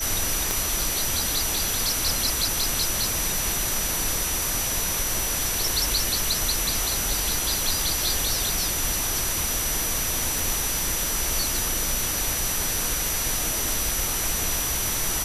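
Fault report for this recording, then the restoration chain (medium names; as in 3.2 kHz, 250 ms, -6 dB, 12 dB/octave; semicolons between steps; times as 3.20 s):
whine 5.9 kHz -30 dBFS
0.51 s: pop
10.39 s: pop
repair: de-click; band-stop 5.9 kHz, Q 30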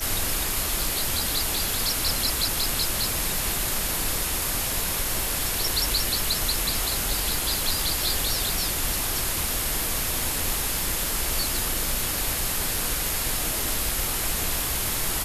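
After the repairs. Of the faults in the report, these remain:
0.51 s: pop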